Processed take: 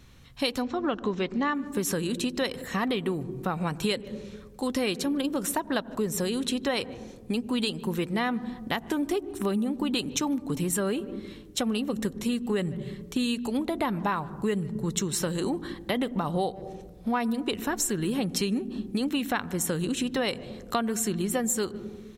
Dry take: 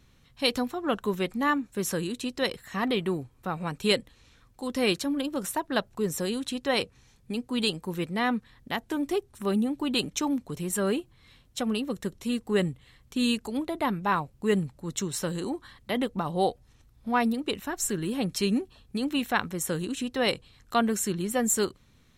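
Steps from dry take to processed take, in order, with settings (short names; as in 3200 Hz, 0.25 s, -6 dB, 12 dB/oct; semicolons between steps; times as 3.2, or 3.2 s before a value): 0.62–1.55 steep low-pass 6400 Hz 36 dB/oct; speakerphone echo 0.15 s, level -27 dB; on a send at -23 dB: reverb RT60 1.3 s, pre-delay 76 ms; on the sum: compressor 6:1, threshold -31 dBFS, peak gain reduction 12 dB; gain +6.5 dB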